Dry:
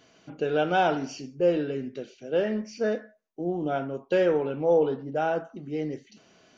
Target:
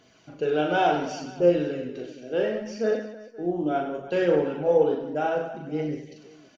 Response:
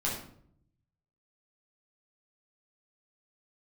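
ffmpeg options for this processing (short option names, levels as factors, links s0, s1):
-af "aecho=1:1:40|100|190|325|527.5:0.631|0.398|0.251|0.158|0.1,aphaser=in_gain=1:out_gain=1:delay=3.5:decay=0.29:speed=0.69:type=triangular,volume=0.841"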